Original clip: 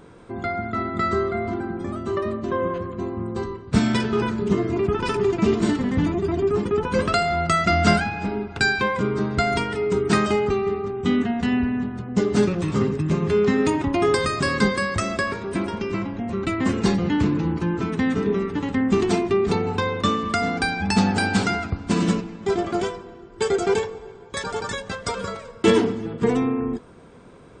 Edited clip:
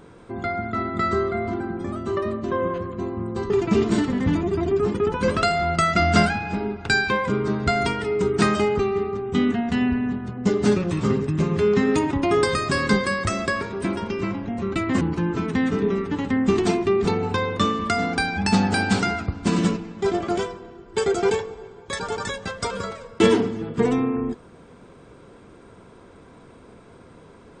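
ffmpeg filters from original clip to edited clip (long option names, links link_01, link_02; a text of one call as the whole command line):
ffmpeg -i in.wav -filter_complex "[0:a]asplit=3[link_01][link_02][link_03];[link_01]atrim=end=3.502[link_04];[link_02]atrim=start=5.208:end=16.722[link_05];[link_03]atrim=start=17.448[link_06];[link_04][link_05]acrossfade=duration=0.004:curve1=hsin:curve2=hsin[link_07];[link_07][link_06]acrossfade=duration=0.004:curve1=hsin:curve2=hsin" out.wav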